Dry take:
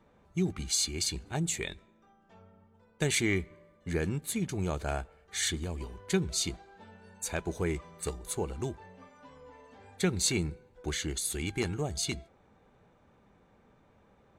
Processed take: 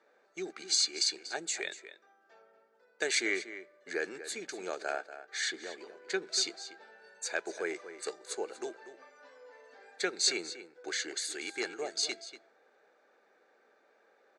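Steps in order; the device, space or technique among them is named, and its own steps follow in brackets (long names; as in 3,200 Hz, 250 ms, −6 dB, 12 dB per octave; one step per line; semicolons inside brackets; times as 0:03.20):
0:04.92–0:06.27: high-shelf EQ 5,600 Hz −9 dB
phone speaker on a table (loudspeaker in its box 390–7,700 Hz, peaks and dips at 1,000 Hz −9 dB, 1,600 Hz +7 dB, 3,100 Hz −6 dB, 4,600 Hz +6 dB)
slap from a distant wall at 41 metres, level −12 dB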